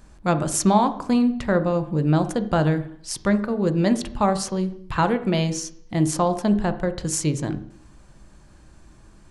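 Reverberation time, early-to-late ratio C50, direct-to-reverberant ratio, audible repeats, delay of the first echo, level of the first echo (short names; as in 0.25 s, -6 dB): 0.60 s, 13.5 dB, 9.0 dB, none, none, none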